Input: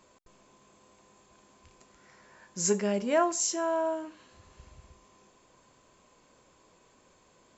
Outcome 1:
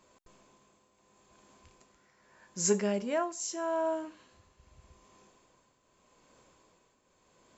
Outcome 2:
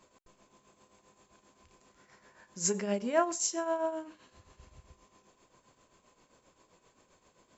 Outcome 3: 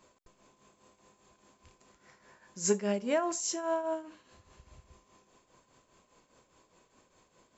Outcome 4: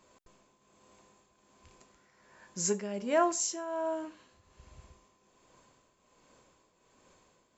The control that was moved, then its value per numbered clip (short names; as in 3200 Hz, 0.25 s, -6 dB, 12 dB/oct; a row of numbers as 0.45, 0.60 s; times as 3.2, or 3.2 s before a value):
tremolo, rate: 0.82, 7.6, 4.9, 1.3 Hz